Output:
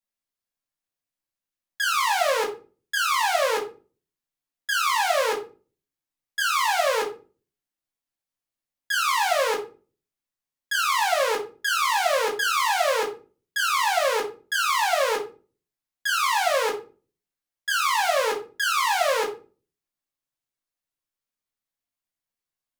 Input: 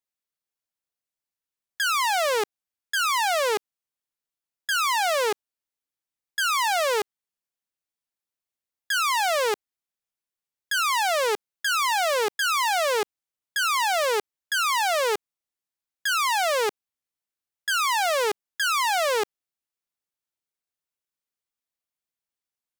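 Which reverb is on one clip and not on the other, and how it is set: simulated room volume 210 m³, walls furnished, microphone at 2.3 m; trim -4 dB

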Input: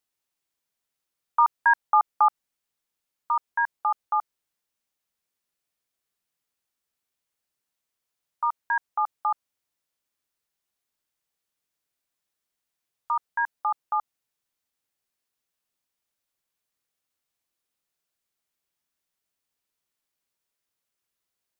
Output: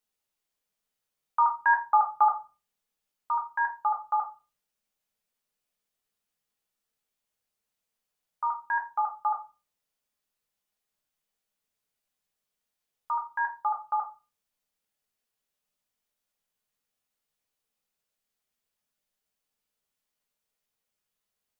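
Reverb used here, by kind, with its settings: simulated room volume 150 m³, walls furnished, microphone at 1.4 m; trim -3.5 dB

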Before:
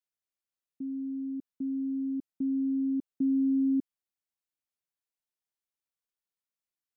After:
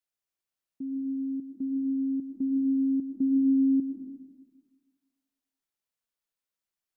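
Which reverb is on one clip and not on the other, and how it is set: algorithmic reverb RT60 1.5 s, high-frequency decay 0.8×, pre-delay 65 ms, DRR 3.5 dB; trim +1 dB

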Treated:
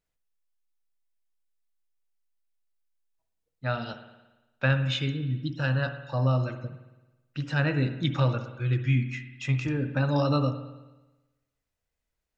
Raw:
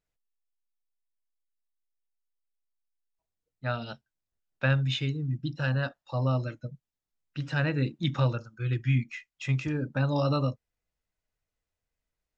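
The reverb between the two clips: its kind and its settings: spring tank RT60 1.1 s, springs 55 ms, chirp 60 ms, DRR 9 dB; trim +1.5 dB

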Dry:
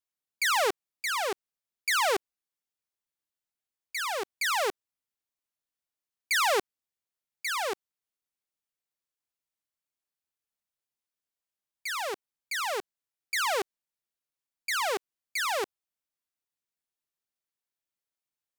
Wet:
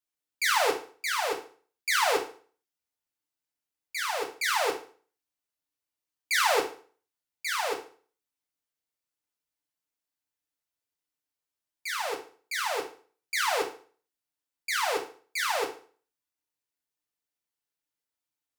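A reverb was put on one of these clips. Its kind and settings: FDN reverb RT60 0.43 s, low-frequency decay 1×, high-frequency decay 0.9×, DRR 0 dB; trim -2 dB

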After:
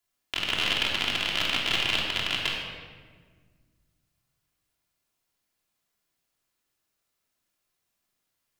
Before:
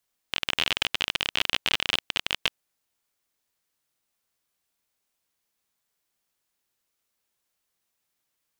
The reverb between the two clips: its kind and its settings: simulated room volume 1800 m³, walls mixed, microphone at 3.1 m; trim -4.5 dB

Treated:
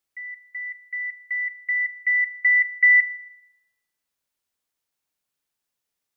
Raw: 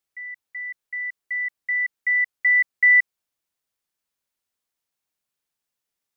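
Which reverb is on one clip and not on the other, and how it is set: FDN reverb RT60 1.1 s, high-frequency decay 0.5×, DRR 16 dB; trim +1 dB

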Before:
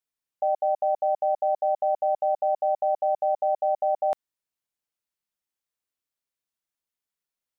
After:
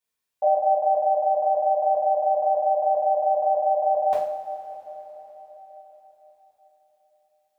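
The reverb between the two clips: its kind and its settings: two-slope reverb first 0.49 s, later 4.6 s, from -18 dB, DRR -8 dB; trim -1.5 dB

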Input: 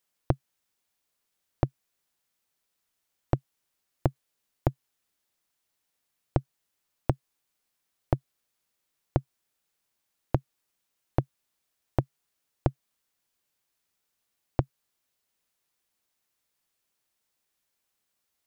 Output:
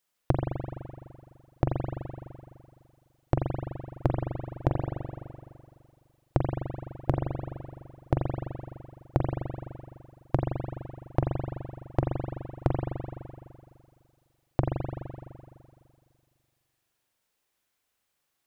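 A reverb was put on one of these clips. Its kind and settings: spring tank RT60 2.2 s, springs 42 ms, chirp 40 ms, DRR -0.5 dB

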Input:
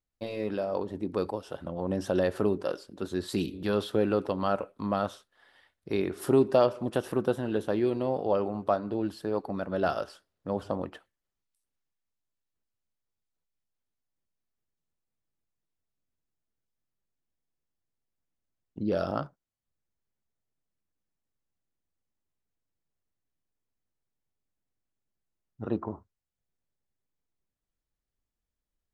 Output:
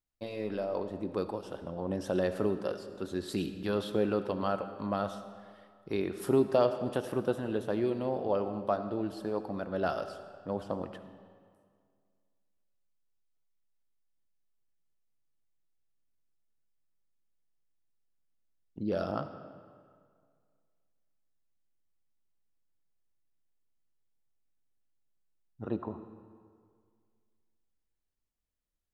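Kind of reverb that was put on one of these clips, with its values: algorithmic reverb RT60 2 s, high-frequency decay 0.75×, pre-delay 35 ms, DRR 10.5 dB; trim -3.5 dB

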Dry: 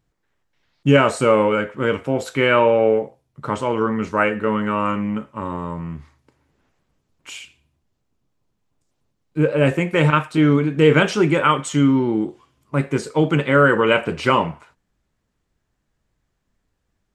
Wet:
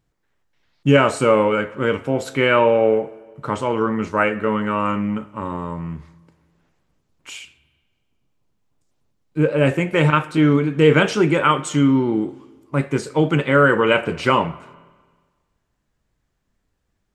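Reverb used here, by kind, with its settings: spring tank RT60 1.5 s, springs 30/39/59 ms, chirp 50 ms, DRR 19 dB

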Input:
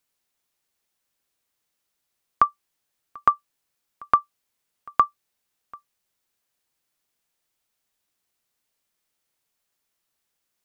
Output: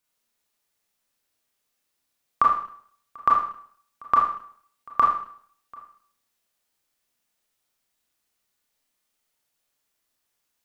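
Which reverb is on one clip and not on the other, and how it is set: Schroeder reverb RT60 0.57 s, combs from 26 ms, DRR -2.5 dB; trim -3 dB

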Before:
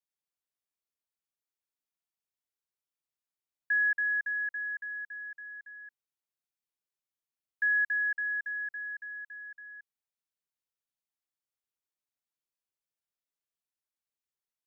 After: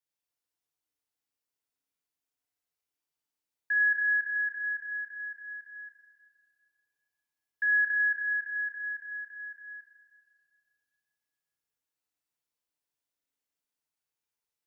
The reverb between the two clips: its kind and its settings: FDN reverb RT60 2.3 s, low-frequency decay 0.8×, high-frequency decay 0.85×, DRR -2 dB; trim -1 dB

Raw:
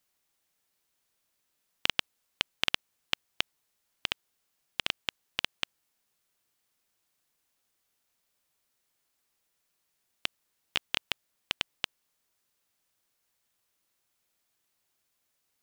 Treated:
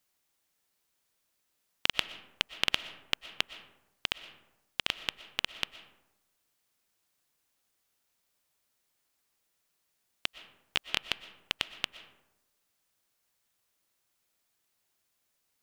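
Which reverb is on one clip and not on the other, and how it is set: algorithmic reverb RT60 0.96 s, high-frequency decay 0.45×, pre-delay 80 ms, DRR 13.5 dB

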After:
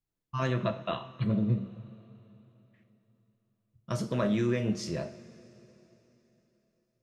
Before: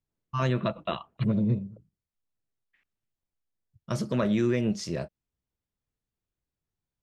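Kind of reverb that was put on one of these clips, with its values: two-slope reverb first 0.4 s, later 3.6 s, from -18 dB, DRR 5.5 dB; trim -3 dB

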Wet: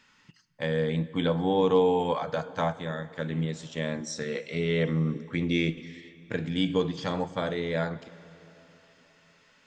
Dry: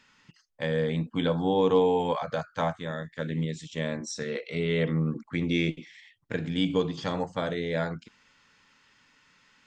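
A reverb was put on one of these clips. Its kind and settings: plate-style reverb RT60 3.9 s, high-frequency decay 0.8×, DRR 16.5 dB

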